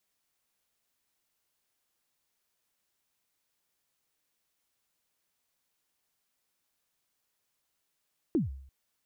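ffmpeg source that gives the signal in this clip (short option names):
-f lavfi -i "aevalsrc='0.0891*pow(10,-3*t/0.64)*sin(2*PI*(370*0.147/log(67/370)*(exp(log(67/370)*min(t,0.147)/0.147)-1)+67*max(t-0.147,0)))':d=0.34:s=44100"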